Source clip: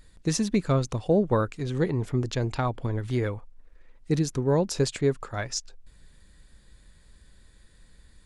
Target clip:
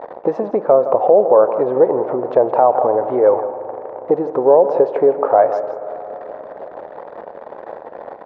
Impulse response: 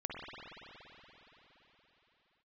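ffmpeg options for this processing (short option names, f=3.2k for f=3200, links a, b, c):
-filter_complex "[0:a]aeval=exprs='val(0)+0.5*0.0106*sgn(val(0))':c=same,aemphasis=mode=reproduction:type=50fm,acompressor=threshold=-29dB:ratio=6,asuperpass=centerf=660:order=4:qfactor=1.7,aecho=1:1:163:0.211,asplit=2[a][b];[1:a]atrim=start_sample=2205,lowpass=2.4k[c];[b][c]afir=irnorm=-1:irlink=0,volume=-13.5dB[d];[a][d]amix=inputs=2:normalize=0,alimiter=level_in=30dB:limit=-1dB:release=50:level=0:latency=1,volume=-1dB"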